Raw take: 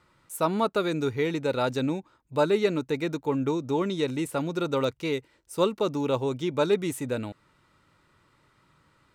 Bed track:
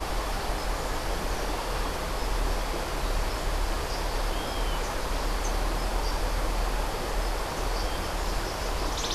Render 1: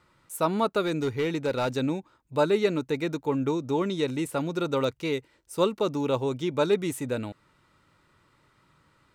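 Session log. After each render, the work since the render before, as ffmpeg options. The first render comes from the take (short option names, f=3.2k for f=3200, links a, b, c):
-filter_complex "[0:a]asettb=1/sr,asplit=3[a][b][c];[a]atrim=end=0.844[d];[b]atrim=start=0.84:end=1.74,asetpts=PTS-STARTPTS,afade=t=in:d=0.004:c=qsin,afade=t=out:st=0.896:d=0.004:c=qsin,asoftclip=type=hard:threshold=-21.5dB[e];[c]atrim=start=1.736[f];[d][e]acrossfade=d=0.004:c1=hsin:c2=qsin[g];[g][f]acrossfade=d=0.004:c1=qsin:c2=hsin"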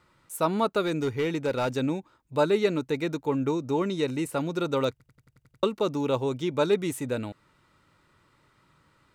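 -filter_complex "[0:a]asettb=1/sr,asplit=3[a][b][c];[a]atrim=end=0.904[d];[b]atrim=start=0.9:end=1.96,asetpts=PTS-STARTPTS,afade=t=in:d=0.004:c=qsin,afade=t=out:st=1.056:d=0.004:c=qsin,bandreject=f=4k:w=12[e];[c]atrim=start=1.956[f];[d][e]acrossfade=d=0.004:c1=hsin:c2=qsin[g];[g][f]acrossfade=d=0.004:c1=qsin:c2=hsin,asettb=1/sr,asplit=3[h][i][j];[h]atrim=end=3.464[k];[i]atrim=start=3.46:end=4.33,asetpts=PTS-STARTPTS,afade=t=in:d=0.004:c=qsin,afade=t=out:st=0.866:d=0.004:c=qsin,bandreject=f=3.4k:w=9.4[l];[j]atrim=start=4.326[m];[k][l]acrossfade=d=0.004:c1=hsin:c2=qsin[n];[n][m]acrossfade=d=0.004:c1=qsin:c2=hsin,asplit=9[o][p][q][r][s][t][u][v][w];[o]atrim=end=5.002[x];[p]atrim=start=4.908:end=5.002[y];[q]atrim=start=4.908:end=5.002[z];[r]atrim=start=4.908:end=5.002[aa];[s]atrim=start=4.908:end=5.002[ab];[t]atrim=start=4.908:end=5.002[ac];[u]atrim=start=4.908:end=5.002[ad];[v]atrim=start=4.908:end=5.002[ae];[w]atrim=start=5.628[af];[x][y]acrossfade=d=0.004:c1=hsin:c2=hsin[ag];[ag][z]acrossfade=d=0.004:c1=hsin:c2=hsin[ah];[ah][aa]acrossfade=d=0.004:c1=hsin:c2=hsin[ai];[ai][ab]acrossfade=d=0.004:c1=hsin:c2=hsin[aj];[aj][ac]acrossfade=d=0.004:c1=hsin:c2=hsin[ak];[ak][ad]acrossfade=d=0.004:c1=hsin:c2=hsin[al];[al][ae]acrossfade=d=0.004:c1=hsin:c2=hsin[am];[am][af]acrossfade=d=0.004:c1=hsin:c2=hsin"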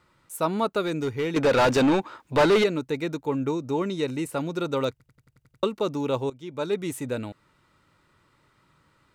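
-filter_complex "[0:a]asettb=1/sr,asplit=3[a][b][c];[a]atrim=end=1.364[d];[b]atrim=start=1.36:end=2.64,asetpts=PTS-STARTPTS,afade=t=in:d=0.004:c=qsin,afade=t=out:st=1.276:d=0.004:c=qsin,asplit=2[e][f];[f]highpass=f=720:p=1,volume=28dB,asoftclip=type=tanh:threshold=-11.5dB[g];[e][g]amix=inputs=2:normalize=0,lowpass=f=2.7k:p=1,volume=-6dB[h];[c]atrim=start=2.636[i];[d][h]acrossfade=d=0.004:c1=hsin:c2=qsin[j];[j][i]acrossfade=d=0.004:c1=qsin:c2=hsin,asplit=2[k][l];[k]atrim=end=6.3,asetpts=PTS-STARTPTS,afade=t=out:st=6.296:d=0.004:c=hsin:silence=0.125893[m];[l]atrim=start=6.3,asetpts=PTS-STARTPTS,afade=t=in:d=0.66:silence=0.125893[n];[m][n]concat=n=2:v=0:a=1"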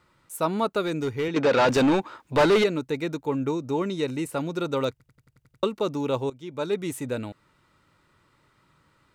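-filter_complex "[0:a]asettb=1/sr,asplit=3[a][b][c];[a]atrim=end=1.284[d];[b]atrim=start=1.28:end=1.69,asetpts=PTS-STARTPTS,afade=t=in:d=0.004:c=qsin,afade=t=out:st=0.406:d=0.004:c=qsin,highpass=130,lowpass=6.2k[e];[c]atrim=start=1.686[f];[d][e]acrossfade=d=0.004:c1=hsin:c2=qsin[g];[g][f]acrossfade=d=0.004:c1=qsin:c2=hsin"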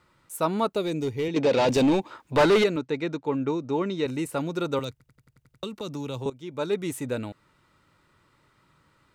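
-filter_complex "[0:a]asettb=1/sr,asplit=3[a][b][c];[a]atrim=end=0.744[d];[b]atrim=start=0.74:end=2.11,asetpts=PTS-STARTPTS,afade=t=in:d=0.004:c=qsin,afade=t=out:st=1.366:d=0.004:c=qsin,equalizer=f=1.4k:t=o:w=0.76:g=-11.5[e];[c]atrim=start=2.106[f];[d][e]acrossfade=d=0.004:c1=hsin:c2=qsin[g];[g][f]acrossfade=d=0.004:c1=qsin:c2=hsin,asettb=1/sr,asplit=3[h][i][j];[h]atrim=end=2.764[k];[i]atrim=start=2.76:end=4.06,asetpts=PTS-STARTPTS,afade=t=in:d=0.004:c=qsin,afade=t=out:st=1.296:d=0.004:c=qsin,highpass=120,lowpass=5.2k[l];[j]atrim=start=4.056[m];[k][l]acrossfade=d=0.004:c1=hsin:c2=qsin[n];[n][m]acrossfade=d=0.004:c1=qsin:c2=hsin,asettb=1/sr,asplit=3[o][p][q];[o]atrim=end=4.794[r];[p]atrim=start=4.79:end=6.26,asetpts=PTS-STARTPTS,afade=t=in:d=0.004:c=qsin,afade=t=out:st=1.466:d=0.004:c=qsin,acrossover=split=190|3000[s][t][u];[t]acompressor=threshold=-33dB:ratio=6:attack=3.2:release=140:knee=2.83:detection=peak[v];[s][v][u]amix=inputs=3:normalize=0[w];[q]atrim=start=6.256[x];[r][w]acrossfade=d=0.004:c1=hsin:c2=qsin[y];[y][x]acrossfade=d=0.004:c1=qsin:c2=hsin"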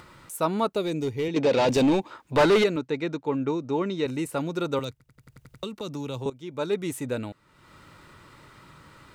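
-af "acompressor=mode=upward:threshold=-38dB:ratio=2.5"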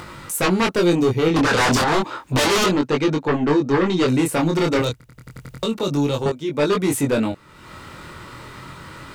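-af "aeval=exprs='0.282*sin(PI/2*3.98*val(0)/0.282)':c=same,flanger=delay=20:depth=5.1:speed=0.31"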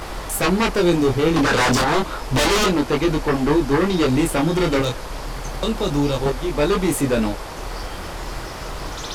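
-filter_complex "[1:a]volume=-1dB[a];[0:a][a]amix=inputs=2:normalize=0"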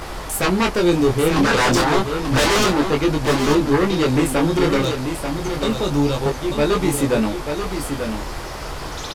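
-filter_complex "[0:a]asplit=2[a][b];[b]adelay=14,volume=-13dB[c];[a][c]amix=inputs=2:normalize=0,aecho=1:1:888:0.447"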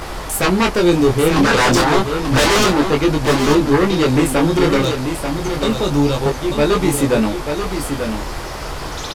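-af "volume=3dB"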